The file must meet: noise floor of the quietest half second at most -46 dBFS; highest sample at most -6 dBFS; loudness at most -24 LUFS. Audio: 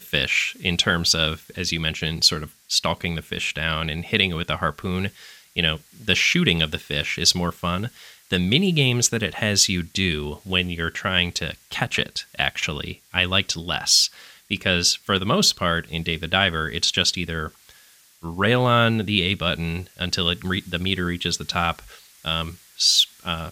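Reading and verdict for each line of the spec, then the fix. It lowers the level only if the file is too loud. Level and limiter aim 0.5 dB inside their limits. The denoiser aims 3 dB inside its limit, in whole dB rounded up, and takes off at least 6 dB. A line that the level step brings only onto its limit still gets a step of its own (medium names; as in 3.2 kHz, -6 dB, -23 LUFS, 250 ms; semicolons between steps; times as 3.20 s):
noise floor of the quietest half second -53 dBFS: pass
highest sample -3.0 dBFS: fail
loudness -21.5 LUFS: fail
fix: trim -3 dB; peak limiter -6.5 dBFS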